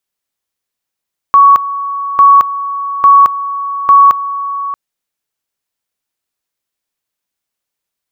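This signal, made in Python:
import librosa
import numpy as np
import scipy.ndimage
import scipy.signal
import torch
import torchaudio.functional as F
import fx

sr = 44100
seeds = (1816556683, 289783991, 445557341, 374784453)

y = fx.two_level_tone(sr, hz=1120.0, level_db=-1.5, drop_db=14.0, high_s=0.22, low_s=0.63, rounds=4)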